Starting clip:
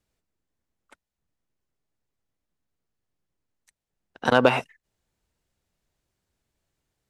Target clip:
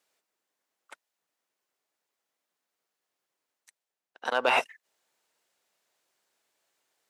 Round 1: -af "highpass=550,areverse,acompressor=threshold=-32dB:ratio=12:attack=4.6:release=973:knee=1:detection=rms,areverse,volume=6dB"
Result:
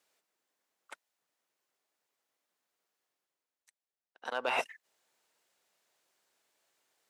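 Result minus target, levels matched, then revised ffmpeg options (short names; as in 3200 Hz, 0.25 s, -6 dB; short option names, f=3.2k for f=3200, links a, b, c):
compressor: peak gain reduction +8 dB
-af "highpass=550,areverse,acompressor=threshold=-23dB:ratio=12:attack=4.6:release=973:knee=1:detection=rms,areverse,volume=6dB"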